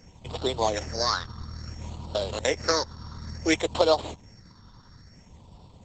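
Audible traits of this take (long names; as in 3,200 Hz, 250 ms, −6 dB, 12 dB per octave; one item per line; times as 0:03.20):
a buzz of ramps at a fixed pitch in blocks of 8 samples
phaser sweep stages 6, 0.58 Hz, lowest notch 640–1,700 Hz
Opus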